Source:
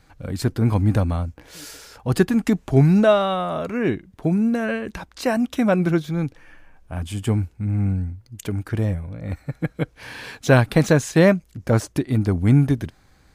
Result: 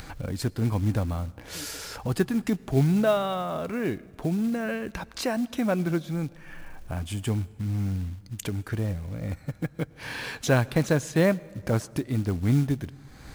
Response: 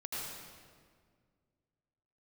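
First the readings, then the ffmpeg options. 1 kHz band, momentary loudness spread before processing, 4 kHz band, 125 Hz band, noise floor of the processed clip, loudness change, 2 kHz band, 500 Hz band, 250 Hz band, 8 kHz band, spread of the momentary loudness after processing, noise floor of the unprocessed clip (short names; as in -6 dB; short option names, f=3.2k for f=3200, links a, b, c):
-6.5 dB, 16 LU, -3.5 dB, -6.5 dB, -50 dBFS, -7.0 dB, -6.0 dB, -7.0 dB, -6.5 dB, -2.5 dB, 12 LU, -56 dBFS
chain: -filter_complex "[0:a]acompressor=mode=upward:threshold=-18dB:ratio=2.5,acrusher=bits=6:mode=log:mix=0:aa=0.000001,asplit=2[a][b];[1:a]atrim=start_sample=2205,adelay=18[c];[b][c]afir=irnorm=-1:irlink=0,volume=-23.5dB[d];[a][d]amix=inputs=2:normalize=0,volume=-7dB"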